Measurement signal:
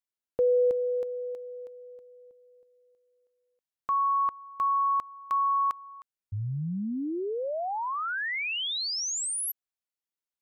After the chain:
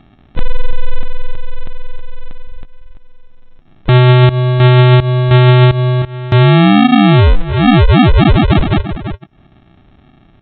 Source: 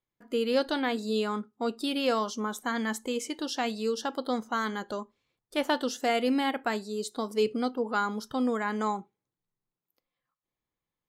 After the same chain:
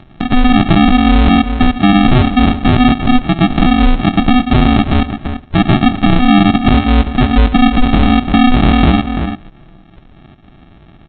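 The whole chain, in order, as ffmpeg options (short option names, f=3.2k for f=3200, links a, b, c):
-filter_complex "[0:a]afftfilt=real='real(if(lt(b,1008),b+24*(1-2*mod(floor(b/24),2)),b),0)':imag='imag(if(lt(b,1008),b+24*(1-2*mod(floor(b/24),2)),b),0)':win_size=2048:overlap=0.75,highpass=240,lowpass=2.3k,aresample=8000,acrusher=samples=16:mix=1:aa=0.000001,aresample=44100,agate=range=-22dB:threshold=-58dB:ratio=16:release=288:detection=rms,asplit=2[a][b];[b]adelay=338.2,volume=-22dB,highshelf=f=4k:g=-7.61[c];[a][c]amix=inputs=2:normalize=0,acompressor=mode=upward:threshold=-33dB:ratio=2.5:attack=8.9:release=118:knee=2.83:detection=peak,adynamicequalizer=threshold=0.00141:dfrequency=1700:dqfactor=7.5:tfrequency=1700:tqfactor=7.5:attack=5:release=100:ratio=0.4:range=2.5:mode=cutabove:tftype=bell,alimiter=level_in=27.5dB:limit=-1dB:release=50:level=0:latency=1,volume=-1dB" -ar 22050 -c:a mp2 -b:a 96k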